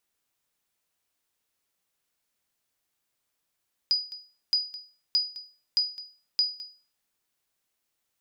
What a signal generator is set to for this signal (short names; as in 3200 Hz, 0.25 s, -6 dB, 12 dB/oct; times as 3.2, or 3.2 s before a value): sonar ping 4930 Hz, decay 0.38 s, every 0.62 s, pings 5, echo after 0.21 s, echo -16 dB -16.5 dBFS